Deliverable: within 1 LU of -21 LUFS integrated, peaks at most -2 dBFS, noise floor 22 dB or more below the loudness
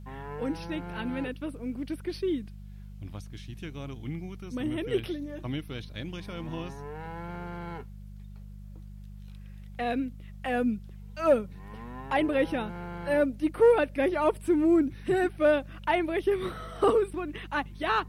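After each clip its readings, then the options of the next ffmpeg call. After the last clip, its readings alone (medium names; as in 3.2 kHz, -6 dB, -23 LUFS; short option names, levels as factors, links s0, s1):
hum 50 Hz; highest harmonic 200 Hz; hum level -41 dBFS; loudness -29.5 LUFS; peak level -12.5 dBFS; loudness target -21.0 LUFS
-> -af "bandreject=f=50:t=h:w=4,bandreject=f=100:t=h:w=4,bandreject=f=150:t=h:w=4,bandreject=f=200:t=h:w=4"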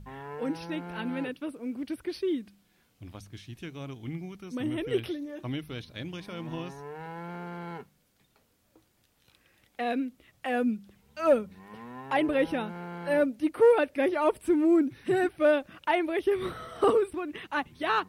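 hum not found; loudness -29.5 LUFS; peak level -13.0 dBFS; loudness target -21.0 LUFS
-> -af "volume=2.66"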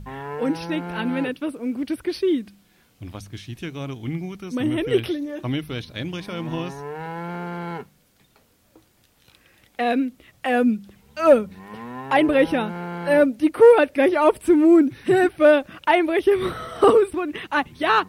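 loudness -21.0 LUFS; peak level -4.5 dBFS; noise floor -61 dBFS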